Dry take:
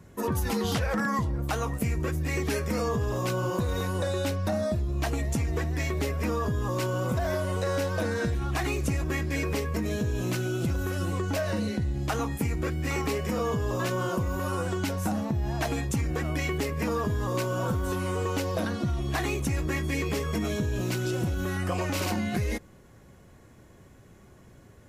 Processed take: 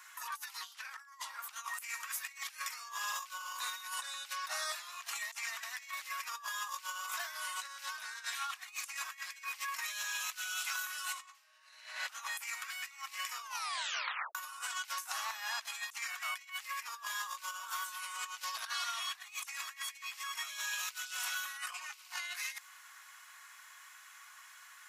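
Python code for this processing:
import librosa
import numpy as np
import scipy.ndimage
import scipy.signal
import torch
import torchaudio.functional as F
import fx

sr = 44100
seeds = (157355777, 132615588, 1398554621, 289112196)

y = fx.reverb_throw(x, sr, start_s=11.12, length_s=0.78, rt60_s=1.6, drr_db=-11.0)
y = fx.edit(y, sr, fx.tape_stop(start_s=13.42, length_s=0.93), tone=tone)
y = scipy.signal.sosfilt(scipy.signal.butter(6, 1100.0, 'highpass', fs=sr, output='sos'), y)
y = fx.dynamic_eq(y, sr, hz=1500.0, q=1.1, threshold_db=-47.0, ratio=4.0, max_db=-5)
y = fx.over_compress(y, sr, threshold_db=-46.0, ratio=-0.5)
y = F.gain(torch.from_numpy(y), 4.5).numpy()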